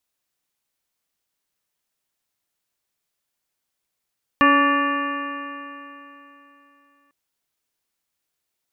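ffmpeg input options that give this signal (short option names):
-f lavfi -i "aevalsrc='0.141*pow(10,-3*t/3.25)*sin(2*PI*281.37*t)+0.0708*pow(10,-3*t/3.25)*sin(2*PI*564.91*t)+0.0355*pow(10,-3*t/3.25)*sin(2*PI*852.81*t)+0.211*pow(10,-3*t/3.25)*sin(2*PI*1147.14*t)+0.0224*pow(10,-3*t/3.25)*sin(2*PI*1449.94*t)+0.133*pow(10,-3*t/3.25)*sin(2*PI*1763.14*t)+0.02*pow(10,-3*t/3.25)*sin(2*PI*2088.54*t)+0.0447*pow(10,-3*t/3.25)*sin(2*PI*2427.84*t)+0.0501*pow(10,-3*t/3.25)*sin(2*PI*2782.59*t)':d=2.7:s=44100"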